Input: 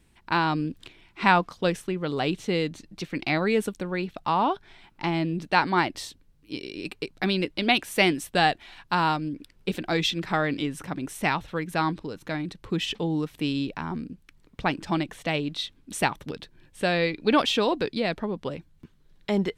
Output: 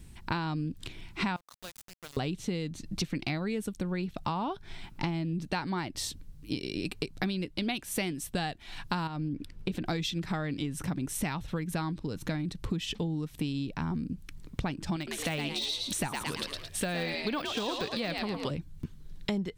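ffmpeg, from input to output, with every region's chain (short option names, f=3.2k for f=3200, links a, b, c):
-filter_complex "[0:a]asettb=1/sr,asplit=3[a][b][c];[a]atrim=end=1.364[d];[b]atrim=start=1.36:end=2.17,asetpts=PTS-STARTPTS,afade=t=in:d=0.004:c=qsin,afade=t=out:st=0.806:d=0.004:c=qsin,acompressor=threshold=-38dB:ratio=6:attack=3.2:release=140:knee=1:detection=peak,acrossover=split=530 8000:gain=0.0891 1 0.0891[e][f][g];[e][f][g]amix=inputs=3:normalize=0,aeval=exprs='val(0)*gte(abs(val(0)),0.00631)':c=same[h];[c]atrim=start=2.166[i];[d][h]acrossfade=d=0.004:c1=hsin:c2=qsin[j];[j][i]acrossfade=d=0.004:c1=qsin:c2=hsin,asettb=1/sr,asplit=3[k][l][m];[k]atrim=end=9.074[n];[l]atrim=start=9.07:end=9.86,asetpts=PTS-STARTPTS,afade=t=in:d=0.004:c=qsin,afade=t=out:st=0.786:d=0.004:c=qsin,highshelf=f=4.7k:g=-10.5,acompressor=threshold=-29dB:ratio=4:attack=3.2:release=140:knee=1:detection=peak[o];[m]atrim=start=9.856[p];[n][o]acrossfade=d=0.004:c1=hsin:c2=qsin[q];[q][p]acrossfade=d=0.004:c1=qsin:c2=hsin,asettb=1/sr,asplit=3[r][s][t];[r]atrim=end=14.964[u];[s]atrim=start=14.96:end=18.51,asetpts=PTS-STARTPTS,afade=t=in:d=0.004:c=qsin,afade=t=out:st=3.546:d=0.004:c=qsin,tiltshelf=f=670:g=-6.5,asplit=6[v][w][x][y][z][aa];[w]adelay=110,afreqshift=69,volume=-6.5dB[ab];[x]adelay=220,afreqshift=138,volume=-14.2dB[ac];[y]adelay=330,afreqshift=207,volume=-22dB[ad];[z]adelay=440,afreqshift=276,volume=-29.7dB[ae];[aa]adelay=550,afreqshift=345,volume=-37.5dB[af];[v][ab][ac][ad][ae][af]amix=inputs=6:normalize=0,atrim=end_sample=156555,deesser=0.75[ag];[t]atrim=start=18.506[ah];[u][ag]acrossfade=d=0.004:c1=hsin:c2=qsin[ai];[ai][ah]acrossfade=d=0.004:c1=qsin:c2=hsin,bass=f=250:g=11,treble=f=4k:g=7,acompressor=threshold=-32dB:ratio=12,volume=3dB"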